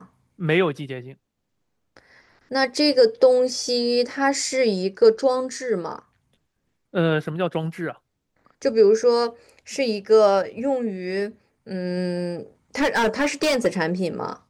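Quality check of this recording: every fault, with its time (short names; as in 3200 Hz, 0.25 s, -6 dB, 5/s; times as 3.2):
12.78–13.67 clipped -16.5 dBFS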